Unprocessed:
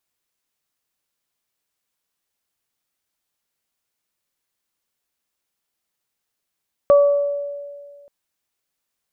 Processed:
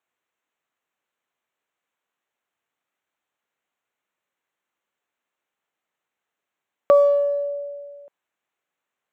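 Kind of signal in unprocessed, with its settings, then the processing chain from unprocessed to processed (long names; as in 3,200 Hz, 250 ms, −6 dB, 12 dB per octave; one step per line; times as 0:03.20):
harmonic partials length 1.18 s, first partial 572 Hz, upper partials −12 dB, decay 1.89 s, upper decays 0.74 s, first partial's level −7.5 dB
adaptive Wiener filter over 9 samples
high-pass filter 460 Hz 6 dB per octave
in parallel at −2 dB: downward compressor, threshold −28 dBFS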